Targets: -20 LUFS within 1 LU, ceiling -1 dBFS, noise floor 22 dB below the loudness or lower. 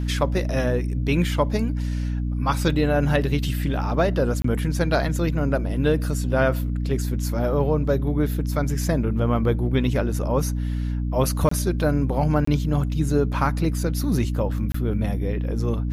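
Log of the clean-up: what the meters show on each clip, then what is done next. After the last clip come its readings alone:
dropouts 4; longest dropout 24 ms; hum 60 Hz; harmonics up to 300 Hz; hum level -22 dBFS; loudness -23.0 LUFS; peak -7.0 dBFS; loudness target -20.0 LUFS
-> interpolate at 4.42/11.49/12.45/14.72, 24 ms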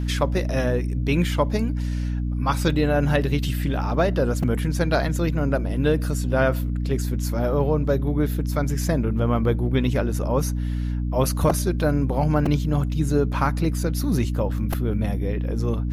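dropouts 0; hum 60 Hz; harmonics up to 300 Hz; hum level -22 dBFS
-> de-hum 60 Hz, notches 5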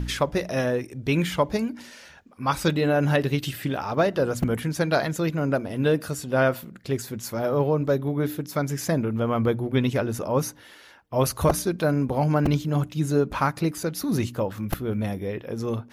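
hum none; loudness -25.0 LUFS; peak -8.0 dBFS; loudness target -20.0 LUFS
-> gain +5 dB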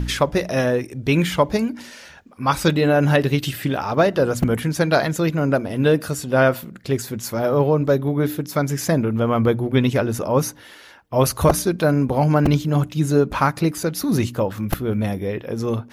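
loudness -20.0 LUFS; peak -3.0 dBFS; noise floor -44 dBFS

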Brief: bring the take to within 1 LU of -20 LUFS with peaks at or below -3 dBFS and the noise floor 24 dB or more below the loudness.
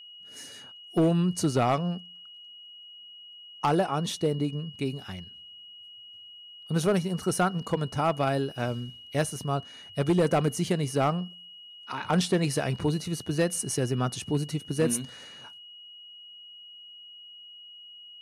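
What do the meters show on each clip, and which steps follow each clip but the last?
clipped 0.4%; flat tops at -17.0 dBFS; steady tone 2900 Hz; tone level -45 dBFS; loudness -28.0 LUFS; peak -17.0 dBFS; loudness target -20.0 LUFS
-> clip repair -17 dBFS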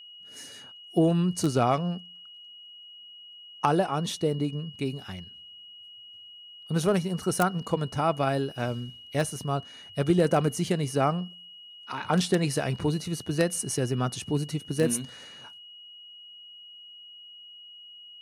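clipped 0.0%; steady tone 2900 Hz; tone level -45 dBFS
-> notch 2900 Hz, Q 30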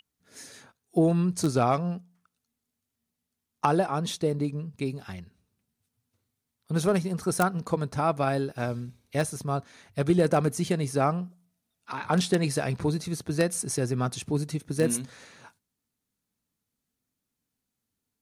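steady tone none; loudness -27.5 LUFS; peak -8.0 dBFS; loudness target -20.0 LUFS
-> gain +7.5 dB; limiter -3 dBFS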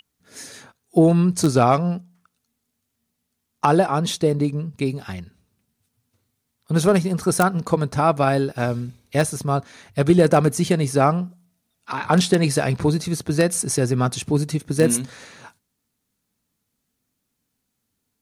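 loudness -20.0 LUFS; peak -3.0 dBFS; noise floor -77 dBFS

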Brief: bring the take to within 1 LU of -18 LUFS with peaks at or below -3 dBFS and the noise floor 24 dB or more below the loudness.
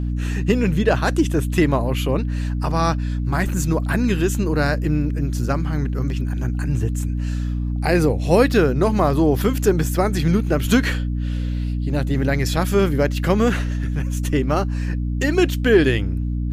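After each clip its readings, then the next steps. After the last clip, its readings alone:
hum 60 Hz; harmonics up to 300 Hz; hum level -20 dBFS; loudness -20.5 LUFS; peak -2.5 dBFS; loudness target -18.0 LUFS
-> de-hum 60 Hz, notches 5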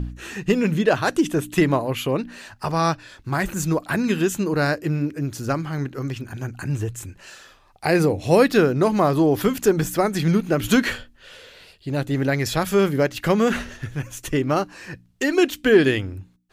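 hum none; loudness -21.5 LUFS; peak -4.0 dBFS; loudness target -18.0 LUFS
-> gain +3.5 dB; limiter -3 dBFS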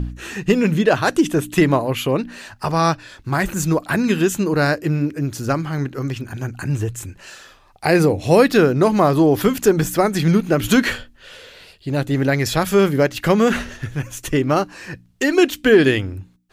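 loudness -18.5 LUFS; peak -3.0 dBFS; noise floor -51 dBFS

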